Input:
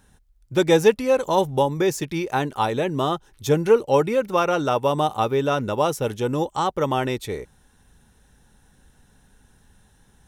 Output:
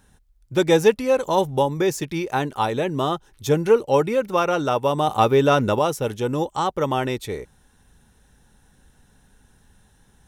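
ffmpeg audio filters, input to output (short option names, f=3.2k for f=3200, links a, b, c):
-filter_complex "[0:a]asettb=1/sr,asplit=3[a][b][c];[a]atrim=end=5.074[d];[b]atrim=start=5.07:end=5.79,asetpts=PTS-STARTPTS,afade=t=in:d=0.004:c=qsin,afade=t=out:st=0.716:d=0.004:c=qsin,acontrast=31[e];[c]atrim=start=5.786[f];[d][e]acrossfade=d=0.004:c1=hsin:c2=qsin[g];[g][f]acrossfade=d=0.004:c1=qsin:c2=hsin"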